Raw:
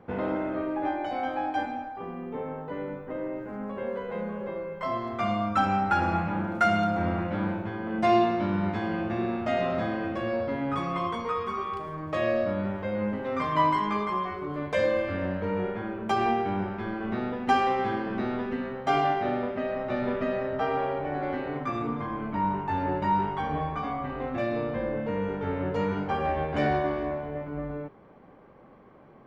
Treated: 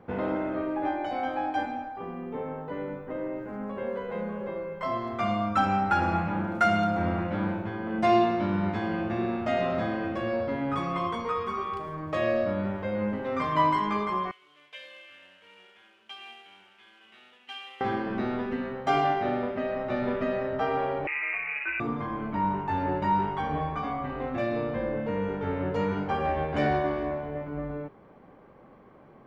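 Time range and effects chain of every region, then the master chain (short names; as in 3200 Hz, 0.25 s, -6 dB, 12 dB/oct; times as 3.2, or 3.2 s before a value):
14.31–17.81 CVSD 64 kbps + band-pass 3000 Hz, Q 5.2
21.07–21.8 air absorption 200 m + inverted band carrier 2700 Hz
whole clip: dry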